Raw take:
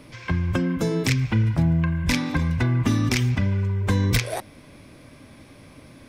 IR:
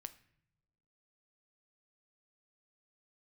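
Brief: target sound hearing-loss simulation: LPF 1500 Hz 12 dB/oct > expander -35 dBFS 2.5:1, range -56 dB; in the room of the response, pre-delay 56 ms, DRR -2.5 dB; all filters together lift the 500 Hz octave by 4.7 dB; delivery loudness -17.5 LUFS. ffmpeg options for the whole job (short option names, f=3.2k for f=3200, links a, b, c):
-filter_complex "[0:a]equalizer=f=500:t=o:g=6,asplit=2[a][b];[1:a]atrim=start_sample=2205,adelay=56[c];[b][c]afir=irnorm=-1:irlink=0,volume=7.5dB[d];[a][d]amix=inputs=2:normalize=0,lowpass=1.5k,agate=range=-56dB:threshold=-35dB:ratio=2.5"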